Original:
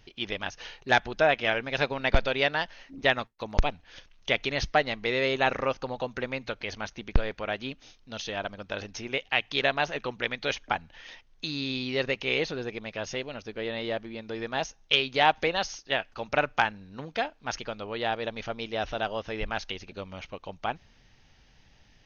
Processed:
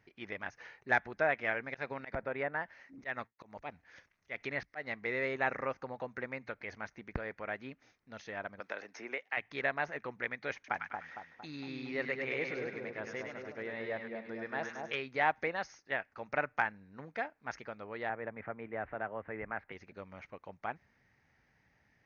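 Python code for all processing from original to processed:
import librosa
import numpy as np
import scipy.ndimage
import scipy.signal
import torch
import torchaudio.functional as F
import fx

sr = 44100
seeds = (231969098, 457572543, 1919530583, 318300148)

y = fx.chain(x, sr, fx.auto_swell(attack_ms=163.0),
    fx.high_shelf(hz=5400.0, db=9.5),
    fx.env_lowpass_down(base_hz=1200.0, full_db=-20.5), at=(1.68, 5.01))
y = fx.chain(y, sr, fx.highpass(hz=340.0, slope=12),
    fx.band_squash(depth_pct=70), at=(8.6, 9.37))
y = fx.chain(y, sr, fx.low_shelf(hz=83.0, db=-6.5),
    fx.echo_split(split_hz=1200.0, low_ms=229, high_ms=101, feedback_pct=52, wet_db=-4.0), at=(10.54, 14.95))
y = fx.chain(y, sr, fx.lowpass(hz=2200.0, slope=24),
    fx.band_squash(depth_pct=40), at=(18.09, 19.72))
y = scipy.signal.sosfilt(scipy.signal.butter(2, 86.0, 'highpass', fs=sr, output='sos'), y)
y = fx.high_shelf_res(y, sr, hz=2500.0, db=-7.0, q=3.0)
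y = y * librosa.db_to_amplitude(-9.0)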